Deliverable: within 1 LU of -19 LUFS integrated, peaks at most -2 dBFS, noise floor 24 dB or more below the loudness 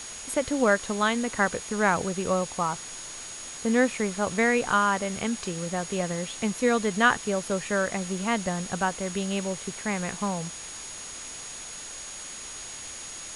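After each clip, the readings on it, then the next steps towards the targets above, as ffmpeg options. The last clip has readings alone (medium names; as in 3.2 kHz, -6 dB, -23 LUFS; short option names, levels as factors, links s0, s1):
steady tone 6.7 kHz; tone level -40 dBFS; noise floor -40 dBFS; noise floor target -52 dBFS; loudness -27.5 LUFS; peak level -8.0 dBFS; loudness target -19.0 LUFS
-> -af "bandreject=f=6700:w=30"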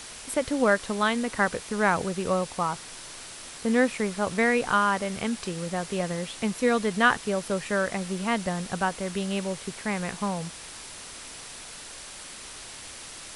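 steady tone not found; noise floor -42 dBFS; noise floor target -51 dBFS
-> -af "afftdn=nr=9:nf=-42"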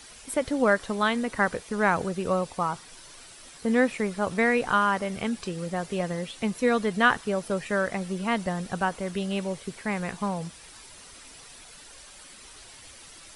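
noise floor -48 dBFS; noise floor target -51 dBFS
-> -af "afftdn=nr=6:nf=-48"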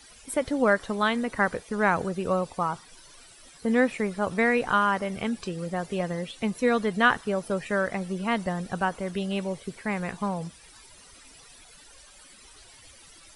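noise floor -52 dBFS; loudness -27.0 LUFS; peak level -8.5 dBFS; loudness target -19.0 LUFS
-> -af "volume=2.51,alimiter=limit=0.794:level=0:latency=1"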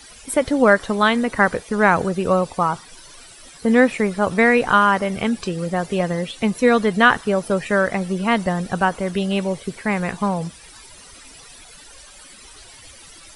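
loudness -19.0 LUFS; peak level -2.0 dBFS; noise floor -44 dBFS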